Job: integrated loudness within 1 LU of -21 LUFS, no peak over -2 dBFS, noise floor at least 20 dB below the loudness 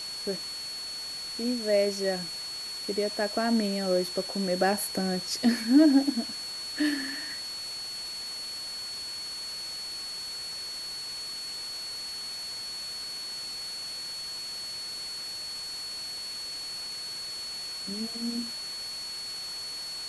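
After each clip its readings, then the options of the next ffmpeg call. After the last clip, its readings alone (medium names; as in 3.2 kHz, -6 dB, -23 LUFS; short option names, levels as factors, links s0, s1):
steady tone 4.4 kHz; tone level -35 dBFS; noise floor -37 dBFS; noise floor target -51 dBFS; loudness -30.5 LUFS; peak level -10.5 dBFS; loudness target -21.0 LUFS
-> -af "bandreject=f=4400:w=30"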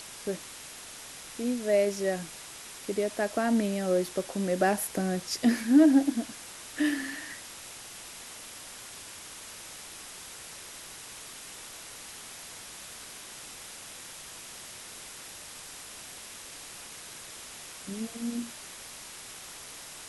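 steady tone not found; noise floor -45 dBFS; noise floor target -53 dBFS
-> -af "afftdn=nr=8:nf=-45"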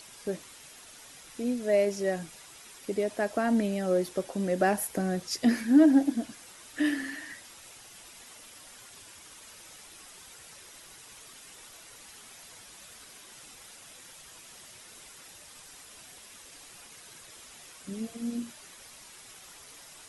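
noise floor -51 dBFS; loudness -28.5 LUFS; peak level -11.0 dBFS; loudness target -21.0 LUFS
-> -af "volume=2.37"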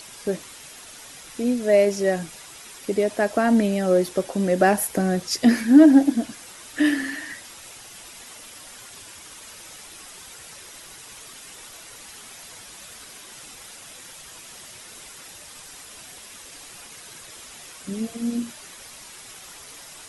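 loudness -21.0 LUFS; peak level -3.5 dBFS; noise floor -43 dBFS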